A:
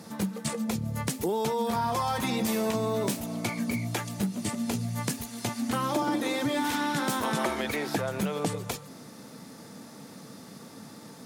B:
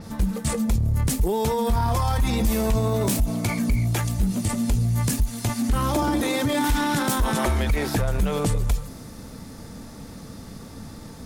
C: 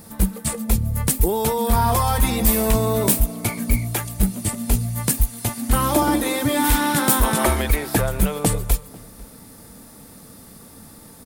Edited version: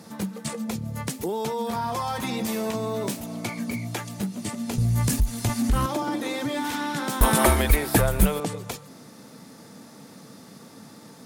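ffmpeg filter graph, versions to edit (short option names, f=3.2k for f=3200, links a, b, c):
-filter_complex "[0:a]asplit=3[a][b][c];[a]atrim=end=4.782[d];[1:a]atrim=start=4.778:end=5.862[e];[b]atrim=start=5.858:end=7.212[f];[2:a]atrim=start=7.208:end=8.402[g];[c]atrim=start=8.398[h];[d][e]acrossfade=d=0.004:c1=hsin:c2=hsin[i];[i][f]acrossfade=d=0.004:c1=hsin:c2=hsin[j];[j][g]acrossfade=d=0.004:c1=hsin:c2=hsin[k];[k][h]acrossfade=d=0.004:c1=hsin:c2=hsin"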